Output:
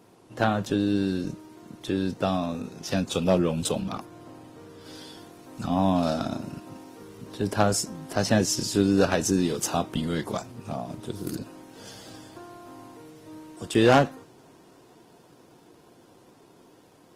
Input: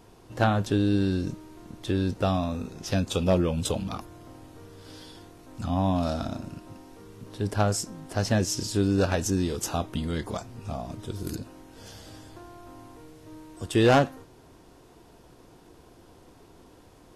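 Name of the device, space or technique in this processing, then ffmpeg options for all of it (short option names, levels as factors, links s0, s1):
video call: -filter_complex "[0:a]asettb=1/sr,asplit=3[s0][s1][s2];[s0]atrim=end=3.804[s3];[s1]atrim=start=3.8:end=4.86,asetpts=PTS-STARTPTS,afade=t=in:d=0.004:c=qsin,afade=t=out:st=1.056:d=0.004:c=qsin,highshelf=f=3600:g=-4[s4];[s2]atrim=start=4.856[s5];[s3][s4]acrossfade=d=0.004:c1=hsin:c2=qsin[s6];[s6][s5]acrossfade=d=0.004:c1=qsin:c2=hsin,highpass=f=120:w=0.5412,highpass=f=120:w=1.3066,dynaudnorm=f=820:g=9:m=1.5" -ar 48000 -c:a libopus -b:a 20k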